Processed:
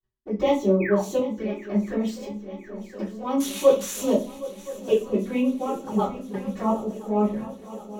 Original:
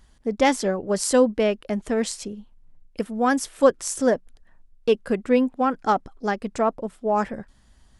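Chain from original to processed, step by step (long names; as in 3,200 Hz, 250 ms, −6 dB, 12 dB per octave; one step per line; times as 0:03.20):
0:03.40–0:04.13: spike at every zero crossing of −11 dBFS
noise gate −49 dBFS, range −29 dB
multi-voice chorus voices 6, 0.39 Hz, delay 17 ms, depth 3.1 ms
0:00.80–0:01.02: sound drawn into the spectrogram fall 670–2,600 Hz −31 dBFS
0:01.17–0:01.73: downward compressor 2.5 to 1, threshold −30 dBFS, peak gain reduction 10 dB
0:05.88–0:06.34: all-pass dispersion highs, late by 105 ms, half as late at 370 Hz
flanger swept by the level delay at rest 7.9 ms, full sweep at −24 dBFS
bass and treble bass −1 dB, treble −8 dB
feedback echo with a long and a short gap by turns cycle 1,021 ms, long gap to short 3 to 1, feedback 66%, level −17 dB
convolution reverb RT60 0.35 s, pre-delay 3 ms, DRR −9.5 dB
linearly interpolated sample-rate reduction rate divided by 2×
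level −7.5 dB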